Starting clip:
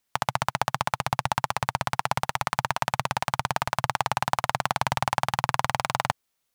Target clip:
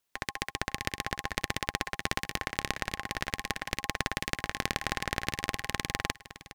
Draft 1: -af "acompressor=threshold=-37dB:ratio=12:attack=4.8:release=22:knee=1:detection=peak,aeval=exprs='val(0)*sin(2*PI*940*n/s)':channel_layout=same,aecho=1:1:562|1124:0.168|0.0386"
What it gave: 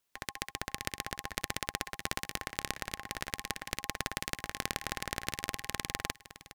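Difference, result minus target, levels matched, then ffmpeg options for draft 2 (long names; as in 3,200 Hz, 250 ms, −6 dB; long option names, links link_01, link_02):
downward compressor: peak gain reduction +7.5 dB
-af "acompressor=threshold=-29dB:ratio=12:attack=4.8:release=22:knee=1:detection=peak,aeval=exprs='val(0)*sin(2*PI*940*n/s)':channel_layout=same,aecho=1:1:562|1124:0.168|0.0386"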